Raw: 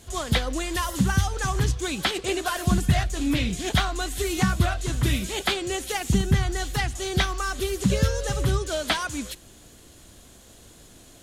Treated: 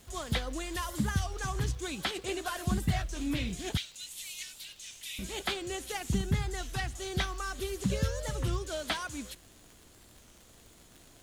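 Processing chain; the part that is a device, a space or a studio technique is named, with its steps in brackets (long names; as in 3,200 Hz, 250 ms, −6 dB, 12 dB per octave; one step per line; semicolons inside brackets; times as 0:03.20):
0:03.77–0:05.19: Butterworth high-pass 2,300 Hz 36 dB per octave
warped LP (wow of a warped record 33 1/3 rpm, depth 160 cents; surface crackle 100 per second −35 dBFS; pink noise bed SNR 30 dB)
level −8.5 dB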